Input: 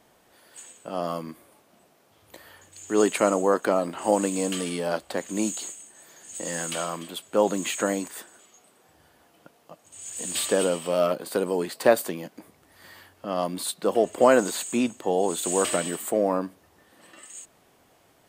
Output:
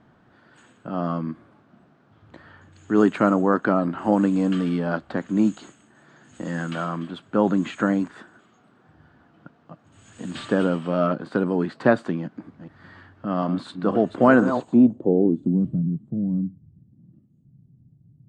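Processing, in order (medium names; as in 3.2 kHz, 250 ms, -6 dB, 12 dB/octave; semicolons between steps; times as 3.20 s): 12.19–14.74 s: chunks repeated in reverse 246 ms, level -10 dB; graphic EQ 125/250/500/1000/2000/4000/8000 Hz +9/+5/-7/-5/-7/+5/+12 dB; low-pass sweep 1.5 kHz -> 150 Hz, 14.34–15.75 s; distance through air 66 m; trim +4 dB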